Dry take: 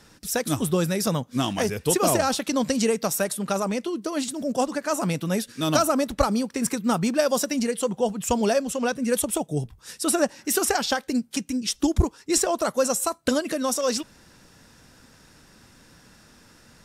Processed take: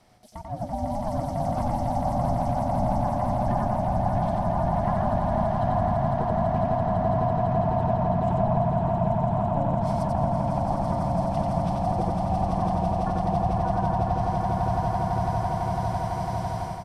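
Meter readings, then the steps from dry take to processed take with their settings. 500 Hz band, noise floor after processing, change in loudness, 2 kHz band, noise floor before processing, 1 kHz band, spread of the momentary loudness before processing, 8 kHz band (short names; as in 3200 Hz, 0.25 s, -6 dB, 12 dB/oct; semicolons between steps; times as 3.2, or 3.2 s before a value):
-1.5 dB, -32 dBFS, -1.0 dB, -10.0 dB, -54 dBFS, +5.5 dB, 5 LU, under -20 dB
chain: bell 6800 Hz -10 dB 0.23 oct; treble ducked by the level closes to 330 Hz, closed at -18.5 dBFS; bell 320 Hz +12 dB 1.1 oct; reverse; compressor 6:1, threshold -30 dBFS, peak gain reduction 21 dB; reverse; swelling echo 0.167 s, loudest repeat 8, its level -5.5 dB; AGC gain up to 11.5 dB; ring modulator 420 Hz; echo 91 ms -3 dB; gain -7.5 dB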